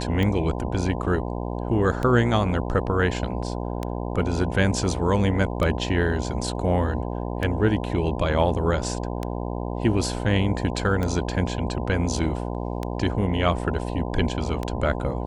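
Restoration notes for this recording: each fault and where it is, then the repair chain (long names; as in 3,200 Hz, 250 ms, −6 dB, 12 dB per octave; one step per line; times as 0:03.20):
mains buzz 60 Hz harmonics 17 −29 dBFS
scratch tick 33 1/3 rpm −14 dBFS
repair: click removal
hum removal 60 Hz, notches 17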